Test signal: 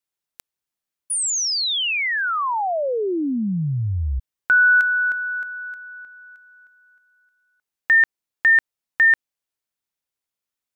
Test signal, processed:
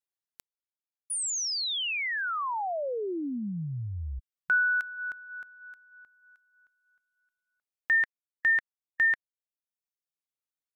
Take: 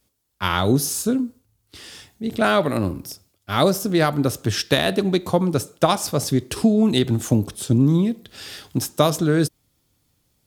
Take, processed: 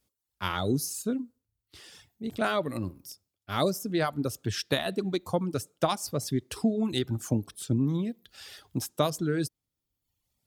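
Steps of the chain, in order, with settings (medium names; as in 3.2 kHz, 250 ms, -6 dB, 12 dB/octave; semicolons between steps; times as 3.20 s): reverb removal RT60 0.98 s; trim -8.5 dB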